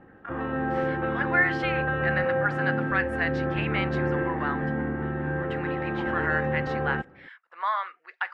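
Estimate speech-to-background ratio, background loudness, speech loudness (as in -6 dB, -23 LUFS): -2.0 dB, -28.5 LUFS, -30.5 LUFS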